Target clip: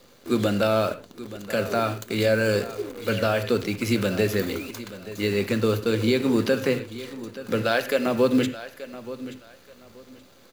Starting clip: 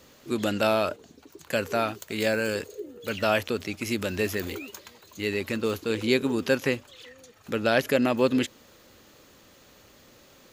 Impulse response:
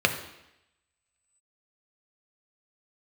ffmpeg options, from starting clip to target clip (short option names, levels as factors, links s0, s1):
-filter_complex "[0:a]asettb=1/sr,asplit=3[s0][s1][s2];[s0]atrim=end=7.614[s3];[s1]atrim=start=7.61:end=8.06,asetpts=PTS-STARTPTS,afade=t=in:d=0.004:c=qsin,afade=t=out:st=0.446:d=0.004:c=qsin,highpass=f=650:p=1[s4];[s2]atrim=start=8.056[s5];[s3][s4]acrossfade=d=0.004:c1=hsin:c2=qsin[s6];[s6][s5]acrossfade=d=0.004:c1=qsin:c2=hsin,alimiter=limit=0.178:level=0:latency=1:release=187,acrusher=bits=8:dc=4:mix=0:aa=0.000001,aecho=1:1:878|1756:0.178|0.0409,asplit=2[s7][s8];[1:a]atrim=start_sample=2205,afade=t=out:st=0.18:d=0.01,atrim=end_sample=8379,lowshelf=f=210:g=6[s9];[s8][s9]afir=irnorm=-1:irlink=0,volume=0.211[s10];[s7][s10]amix=inputs=2:normalize=0"